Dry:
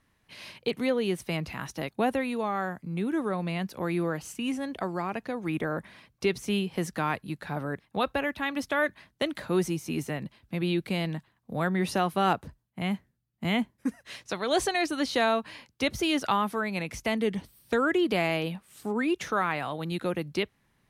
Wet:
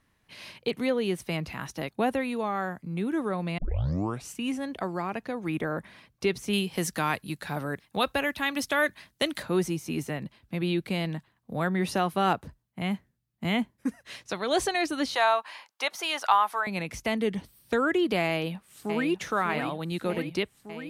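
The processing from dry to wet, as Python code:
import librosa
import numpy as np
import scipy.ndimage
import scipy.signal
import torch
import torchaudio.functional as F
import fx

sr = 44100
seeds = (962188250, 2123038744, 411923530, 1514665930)

y = fx.high_shelf(x, sr, hz=3100.0, db=10.0, at=(6.53, 9.43))
y = fx.highpass_res(y, sr, hz=860.0, q=2.0, at=(15.15, 16.67))
y = fx.echo_throw(y, sr, start_s=18.29, length_s=0.8, ms=600, feedback_pct=75, wet_db=-7.0)
y = fx.edit(y, sr, fx.tape_start(start_s=3.58, length_s=0.72), tone=tone)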